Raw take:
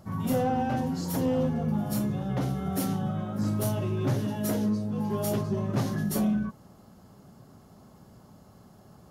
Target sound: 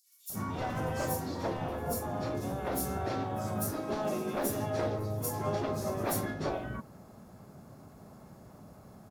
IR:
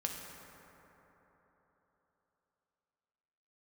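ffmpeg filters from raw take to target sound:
-filter_complex "[0:a]afftfilt=real='re*lt(hypot(re,im),0.224)':imag='im*lt(hypot(re,im),0.224)':win_size=1024:overlap=0.75,equalizer=frequency=630:width_type=o:width=0.26:gain=4.5,bandreject=frequency=3000:width=7.6,asplit=4[link_01][link_02][link_03][link_04];[link_02]asetrate=37084,aresample=44100,atempo=1.18921,volume=-12dB[link_05];[link_03]asetrate=55563,aresample=44100,atempo=0.793701,volume=-11dB[link_06];[link_04]asetrate=88200,aresample=44100,atempo=0.5,volume=-15dB[link_07];[link_01][link_05][link_06][link_07]amix=inputs=4:normalize=0,acrossover=split=4700[link_08][link_09];[link_08]adelay=300[link_10];[link_10][link_09]amix=inputs=2:normalize=0"

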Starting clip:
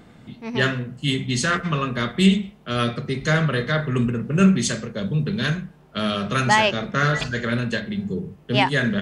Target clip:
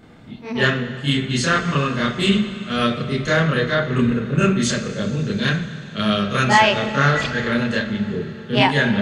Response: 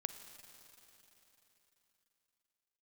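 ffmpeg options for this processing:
-filter_complex "[0:a]asplit=2[link_01][link_02];[1:a]atrim=start_sample=2205,lowpass=6000,adelay=29[link_03];[link_02][link_03]afir=irnorm=-1:irlink=0,volume=6.5dB[link_04];[link_01][link_04]amix=inputs=2:normalize=0,volume=-3dB"

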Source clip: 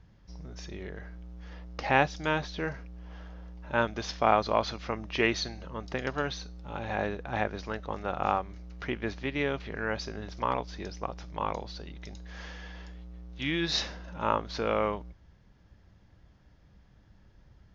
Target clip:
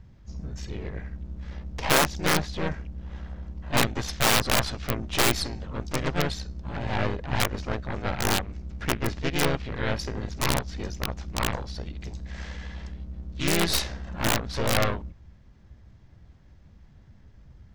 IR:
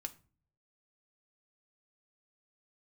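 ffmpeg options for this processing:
-filter_complex "[0:a]lowshelf=frequency=160:gain=7,aeval=exprs='0.473*(cos(1*acos(clip(val(0)/0.473,-1,1)))-cos(1*PI/2))+0.188*(cos(4*acos(clip(val(0)/0.473,-1,1)))-cos(4*PI/2))+0.0473*(cos(8*acos(clip(val(0)/0.473,-1,1)))-cos(8*PI/2))':channel_layout=same,aeval=exprs='(mod(3.98*val(0)+1,2)-1)/3.98':channel_layout=same,asplit=2[link_01][link_02];[link_02]asetrate=52444,aresample=44100,atempo=0.840896,volume=-3dB[link_03];[link_01][link_03]amix=inputs=2:normalize=0"

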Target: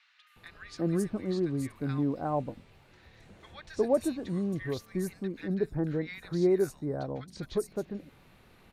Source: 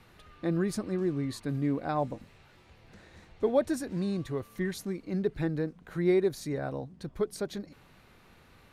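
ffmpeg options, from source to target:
ffmpeg -i in.wav -filter_complex "[0:a]acrossover=split=1400|5900[link_01][link_02][link_03];[link_03]adelay=270[link_04];[link_01]adelay=360[link_05];[link_05][link_02][link_04]amix=inputs=3:normalize=0" out.wav

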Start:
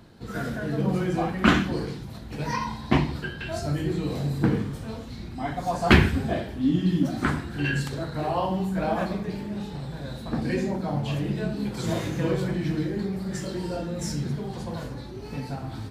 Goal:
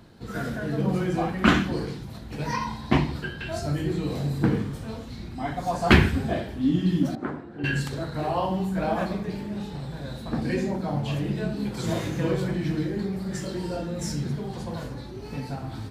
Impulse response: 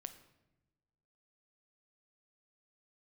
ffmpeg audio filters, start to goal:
-filter_complex "[0:a]asettb=1/sr,asplit=3[link_01][link_02][link_03];[link_01]atrim=end=7.154[link_04];[link_02]atrim=start=7.15:end=7.64,asetpts=PTS-STARTPTS,afade=type=in:duration=0.004:curve=qsin,afade=type=out:start_time=0.486:duration=0.004:curve=qsin,bandpass=frequency=480:width_type=q:width=1.1:csg=0[link_05];[link_03]atrim=start=7.636[link_06];[link_04][link_05]acrossfade=duration=0.004:curve1=hsin:curve2=qsin[link_07];[link_07][link_06]acrossfade=duration=0.004:curve1=qsin:curve2=hsin"

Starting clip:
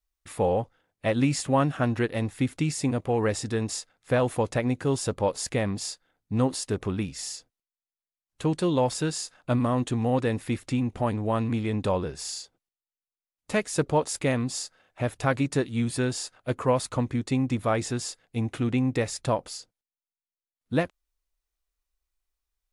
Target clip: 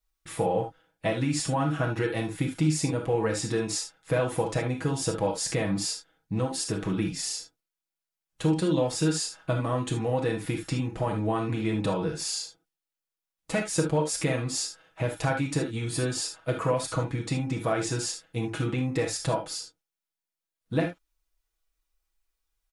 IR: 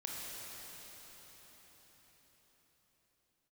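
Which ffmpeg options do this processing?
-filter_complex "[0:a]acompressor=threshold=-26dB:ratio=4,aecho=1:1:6.2:0.74[link_01];[1:a]atrim=start_sample=2205,atrim=end_sample=3528[link_02];[link_01][link_02]afir=irnorm=-1:irlink=0,volume=5dB"

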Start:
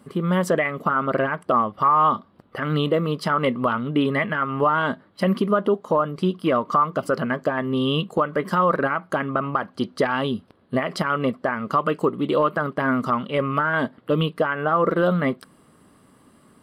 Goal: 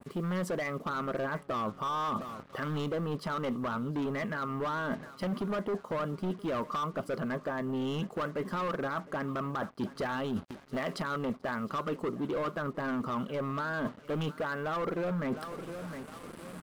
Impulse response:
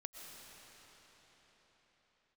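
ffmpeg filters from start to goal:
-af "asoftclip=type=hard:threshold=-20.5dB,aecho=1:1:710|1420|2130:0.0794|0.0357|0.0161,acrusher=bits=7:mix=0:aa=0.5,areverse,acompressor=threshold=-36dB:ratio=6,areverse,adynamicequalizer=threshold=0.002:dfrequency=1800:dqfactor=0.7:tfrequency=1800:tqfactor=0.7:attack=5:release=100:ratio=0.375:range=3.5:mode=cutabove:tftype=highshelf,volume=4dB"

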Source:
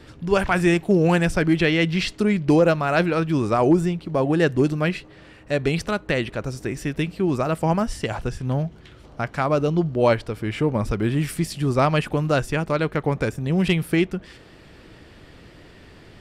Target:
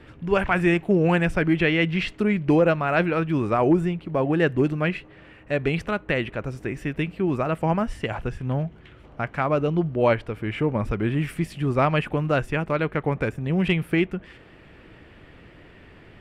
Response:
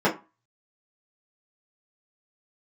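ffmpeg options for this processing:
-af "highshelf=frequency=3500:width_type=q:width=1.5:gain=-9,volume=-2dB"

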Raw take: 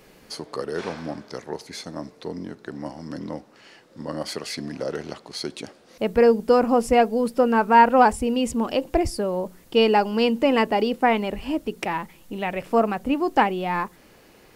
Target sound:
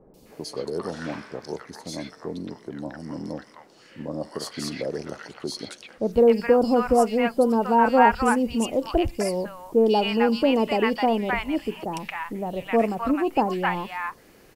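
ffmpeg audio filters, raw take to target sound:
ffmpeg -i in.wav -filter_complex "[0:a]acrossover=split=930|3400[link_01][link_02][link_03];[link_03]adelay=140[link_04];[link_02]adelay=260[link_05];[link_01][link_05][link_04]amix=inputs=3:normalize=0" out.wav

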